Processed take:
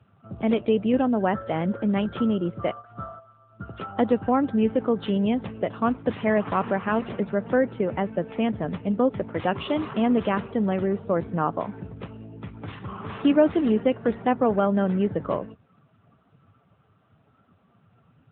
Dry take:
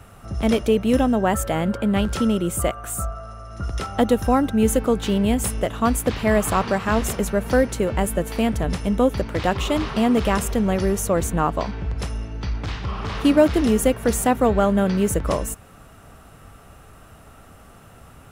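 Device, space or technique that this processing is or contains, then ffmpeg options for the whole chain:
mobile call with aggressive noise cancelling: -filter_complex "[0:a]asettb=1/sr,asplit=3[a][b][c];[a]atrim=end=2.024[d];[b]atrim=start=2.02:end=3.8,asetpts=PTS-STARTPTS,afade=t=in:d=0.004:c=qsin,afade=t=out:st=1.776:d=0.004:c=qsin,agate=range=-7dB:threshold=-31dB:ratio=16:detection=peak[e];[c]atrim=start=3.796[f];[d][e]acrossfade=d=0.004:c1=hsin:c2=qsin[g];[g][f]acrossfade=d=0.004:c1=qsin:c2=hsin,highpass=100,afftdn=nr=13:nf=-37,volume=-3dB" -ar 8000 -c:a libopencore_amrnb -b:a 10200

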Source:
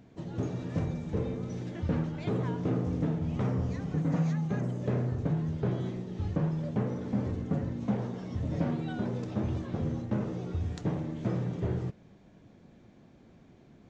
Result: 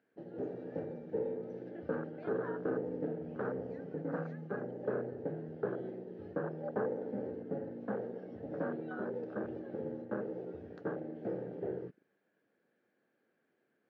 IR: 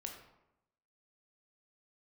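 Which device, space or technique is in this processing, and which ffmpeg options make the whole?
phone earpiece: -filter_complex "[0:a]afwtdn=0.0126,highpass=440,equalizer=f=470:t=q:w=4:g=4,equalizer=f=690:t=q:w=4:g=-5,equalizer=f=1k:t=q:w=4:g=-7,equalizer=f=1.6k:t=q:w=4:g=10,equalizer=f=2.3k:t=q:w=4:g=-3,equalizer=f=3.6k:t=q:w=4:g=-8,lowpass=f=4.1k:w=0.5412,lowpass=f=4.1k:w=1.3066,asettb=1/sr,asplit=3[a][b][c];[a]atrim=end=6.444[d];[b]atrim=start=6.44:end=7.11,asetpts=PTS-STARTPTS,afade=t=in:d=0.004:c=qsin,afade=t=out:st=0.666:d=0.004:c=qsin,equalizer=f=790:w=1:g=4.5[e];[c]atrim=start=7.106[f];[d][e]acrossfade=d=0.004:c1=hsin:c2=qsin[g];[g][f]acrossfade=d=0.004:c1=qsin:c2=hsin,volume=2dB"

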